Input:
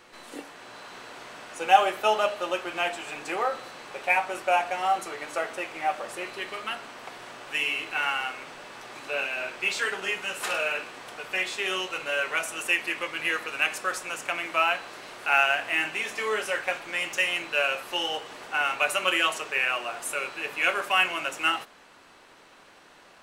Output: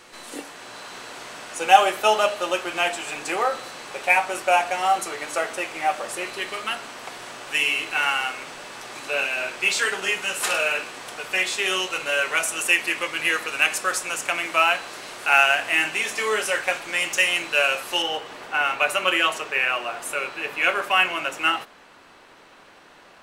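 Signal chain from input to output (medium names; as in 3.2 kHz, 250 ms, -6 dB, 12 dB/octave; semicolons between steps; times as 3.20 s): peaking EQ 8.9 kHz +6.5 dB 1.9 oct, from 18.02 s -3.5 dB; trim +4 dB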